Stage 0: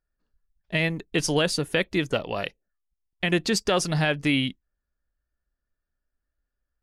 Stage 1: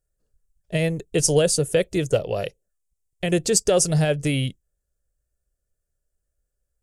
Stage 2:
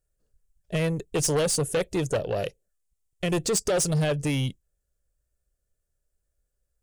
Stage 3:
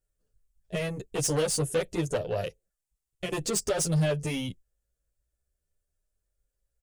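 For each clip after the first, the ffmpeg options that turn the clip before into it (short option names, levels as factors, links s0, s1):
-af "equalizer=f=125:t=o:w=1:g=6,equalizer=f=250:t=o:w=1:g=-10,equalizer=f=500:t=o:w=1:g=8,equalizer=f=1000:t=o:w=1:g=-11,equalizer=f=2000:t=o:w=1:g=-7,equalizer=f=4000:t=o:w=1:g=-8,equalizer=f=8000:t=o:w=1:g=11,volume=1.58"
-af "asoftclip=type=tanh:threshold=0.1"
-filter_complex "[0:a]asplit=2[s0][s1];[s1]adelay=9.6,afreqshift=0.5[s2];[s0][s2]amix=inputs=2:normalize=1"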